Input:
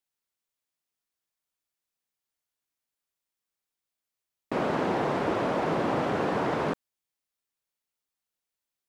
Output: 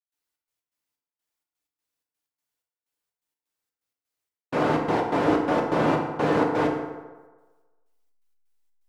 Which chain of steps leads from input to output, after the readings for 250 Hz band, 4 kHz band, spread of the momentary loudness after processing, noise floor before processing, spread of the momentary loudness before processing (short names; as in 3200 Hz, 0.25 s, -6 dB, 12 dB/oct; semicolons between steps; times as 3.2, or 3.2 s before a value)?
+5.5 dB, +2.0 dB, 9 LU, under -85 dBFS, 5 LU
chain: step gate ".xx.x.xx..xx.x" 126 bpm -60 dB; bell 77 Hz -3 dB 0.37 oct; in parallel at -9 dB: backlash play -42.5 dBFS; on the sum: FDN reverb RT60 1.3 s, low-frequency decay 0.8×, high-frequency decay 0.55×, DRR 0 dB